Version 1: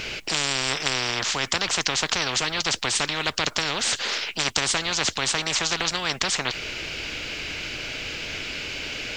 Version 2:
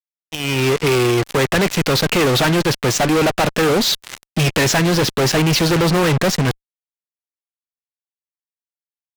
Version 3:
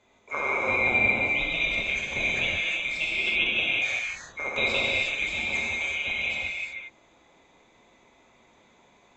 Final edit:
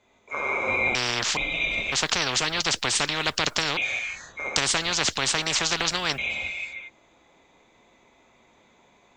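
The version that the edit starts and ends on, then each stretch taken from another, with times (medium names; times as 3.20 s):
3
0.95–1.37 s: from 1
1.92–3.77 s: from 1
4.56–6.18 s: from 1
not used: 2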